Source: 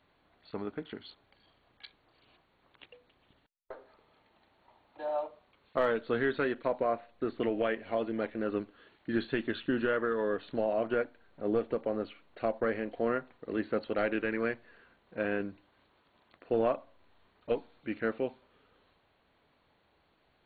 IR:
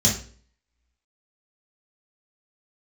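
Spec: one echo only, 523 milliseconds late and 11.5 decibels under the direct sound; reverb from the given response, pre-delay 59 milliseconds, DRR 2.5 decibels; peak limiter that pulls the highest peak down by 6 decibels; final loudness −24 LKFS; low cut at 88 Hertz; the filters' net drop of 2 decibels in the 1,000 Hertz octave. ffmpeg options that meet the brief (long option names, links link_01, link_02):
-filter_complex "[0:a]highpass=88,equalizer=frequency=1000:width_type=o:gain=-3,alimiter=limit=-23.5dB:level=0:latency=1,aecho=1:1:523:0.266,asplit=2[link_01][link_02];[1:a]atrim=start_sample=2205,adelay=59[link_03];[link_02][link_03]afir=irnorm=-1:irlink=0,volume=-15.5dB[link_04];[link_01][link_04]amix=inputs=2:normalize=0,volume=6dB"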